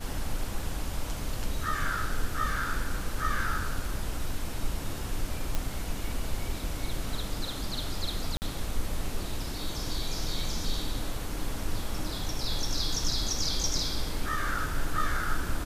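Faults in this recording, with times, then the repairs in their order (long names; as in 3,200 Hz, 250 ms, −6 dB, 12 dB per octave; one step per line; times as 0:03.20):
0:05.55: click −15 dBFS
0:08.37–0:08.42: drop-out 49 ms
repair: click removal
repair the gap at 0:08.37, 49 ms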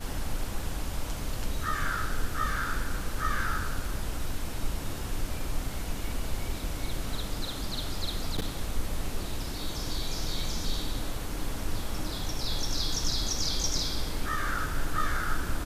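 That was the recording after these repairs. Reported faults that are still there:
none of them is left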